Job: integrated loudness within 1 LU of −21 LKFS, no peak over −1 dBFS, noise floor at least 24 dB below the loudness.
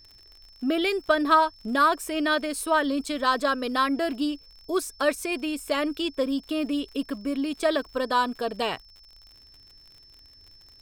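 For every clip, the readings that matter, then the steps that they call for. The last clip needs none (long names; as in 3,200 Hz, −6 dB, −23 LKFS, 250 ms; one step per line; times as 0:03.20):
crackle rate 46 per second; interfering tone 5,300 Hz; level of the tone −51 dBFS; integrated loudness −26.0 LKFS; sample peak −7.5 dBFS; target loudness −21.0 LKFS
→ click removal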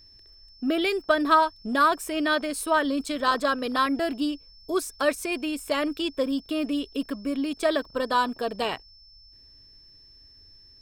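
crackle rate 2.1 per second; interfering tone 5,300 Hz; level of the tone −51 dBFS
→ notch filter 5,300 Hz, Q 30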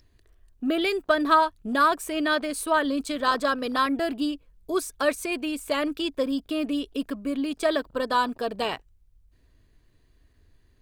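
interfering tone none found; integrated loudness −26.0 LKFS; sample peak −8.0 dBFS; target loudness −21.0 LKFS
→ level +5 dB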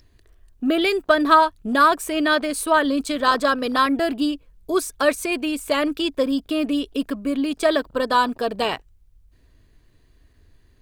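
integrated loudness −21.0 LKFS; sample peak −3.0 dBFS; background noise floor −57 dBFS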